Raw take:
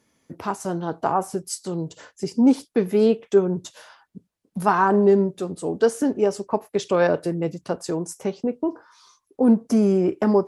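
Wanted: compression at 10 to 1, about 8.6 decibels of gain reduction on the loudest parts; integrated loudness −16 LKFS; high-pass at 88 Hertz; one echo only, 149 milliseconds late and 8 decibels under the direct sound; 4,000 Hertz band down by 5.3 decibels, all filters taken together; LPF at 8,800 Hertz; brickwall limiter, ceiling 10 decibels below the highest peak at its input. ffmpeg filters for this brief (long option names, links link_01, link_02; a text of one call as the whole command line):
ffmpeg -i in.wav -af "highpass=88,lowpass=8800,equalizer=frequency=4000:width_type=o:gain=-7,acompressor=threshold=-20dB:ratio=10,alimiter=limit=-19.5dB:level=0:latency=1,aecho=1:1:149:0.398,volume=13.5dB" out.wav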